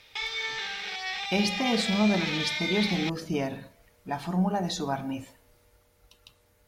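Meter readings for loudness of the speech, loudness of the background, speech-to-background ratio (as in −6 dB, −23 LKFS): −29.0 LKFS, −30.5 LKFS, 1.5 dB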